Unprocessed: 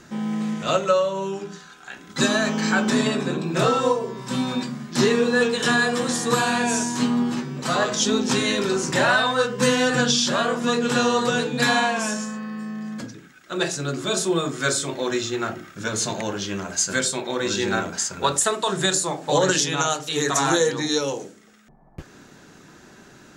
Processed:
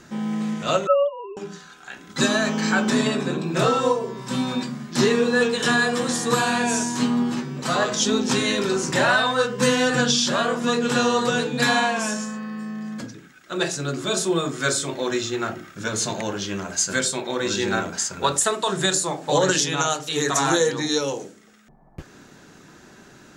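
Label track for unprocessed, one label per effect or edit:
0.870000	1.370000	three sine waves on the formant tracks

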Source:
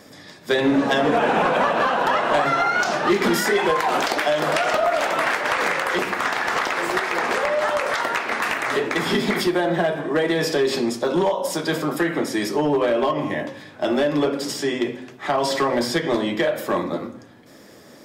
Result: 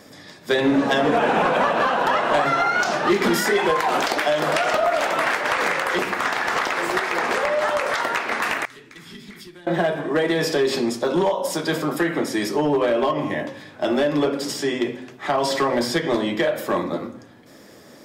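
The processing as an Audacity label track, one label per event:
8.650000	9.670000	guitar amp tone stack bass-middle-treble 6-0-2

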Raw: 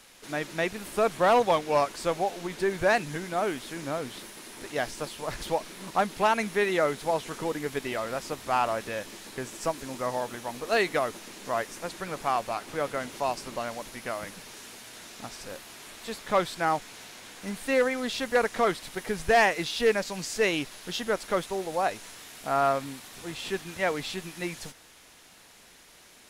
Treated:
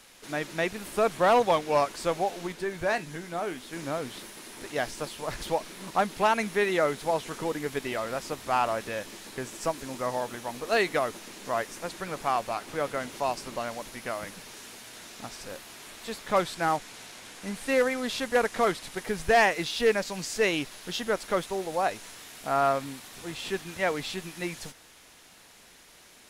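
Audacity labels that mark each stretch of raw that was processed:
2.520000	3.730000	tuned comb filter 84 Hz, decay 0.19 s
16.360000	19.040000	variable-slope delta modulation 64 kbit/s

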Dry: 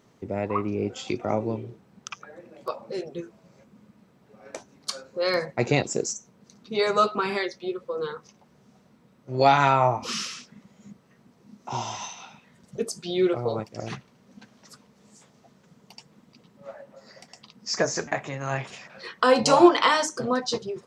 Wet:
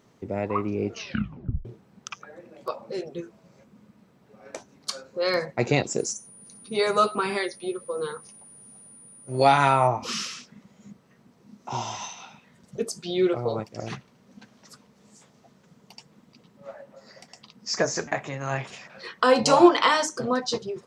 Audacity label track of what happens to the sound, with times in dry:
0.880000	0.880000	tape stop 0.77 s
5.980000	9.860000	steady tone 9,500 Hz −47 dBFS

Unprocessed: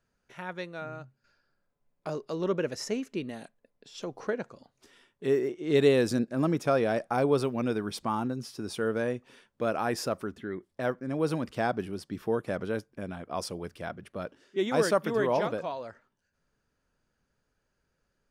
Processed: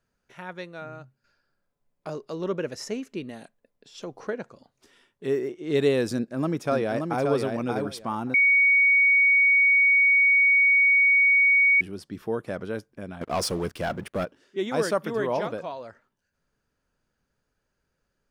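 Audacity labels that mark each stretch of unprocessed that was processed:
6.130000	7.290000	delay throw 580 ms, feedback 15%, level −4.5 dB
8.340000	11.810000	beep over 2,240 Hz −15.5 dBFS
13.210000	14.250000	leveller curve on the samples passes 3

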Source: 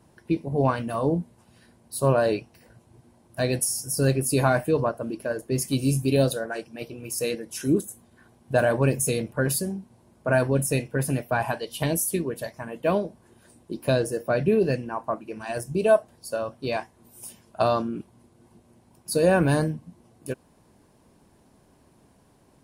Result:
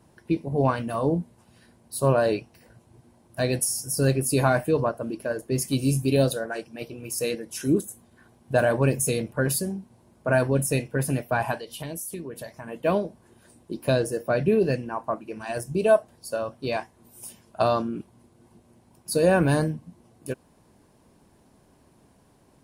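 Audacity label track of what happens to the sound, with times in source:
11.590000	12.680000	downward compressor 2.5 to 1, threshold −35 dBFS

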